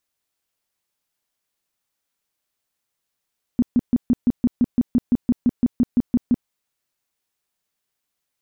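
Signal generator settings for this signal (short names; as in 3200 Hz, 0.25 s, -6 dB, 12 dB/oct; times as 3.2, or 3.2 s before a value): tone bursts 243 Hz, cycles 8, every 0.17 s, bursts 17, -12 dBFS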